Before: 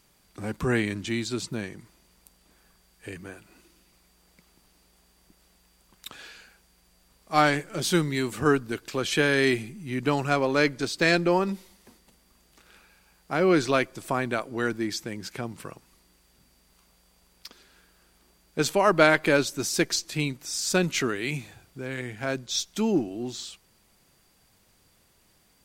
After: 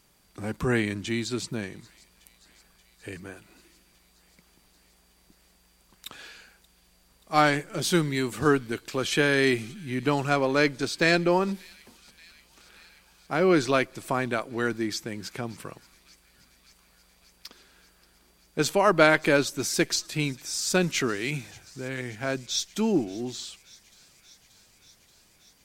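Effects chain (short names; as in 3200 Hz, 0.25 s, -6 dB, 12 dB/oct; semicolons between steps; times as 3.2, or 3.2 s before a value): thin delay 0.58 s, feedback 76%, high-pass 2900 Hz, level -21 dB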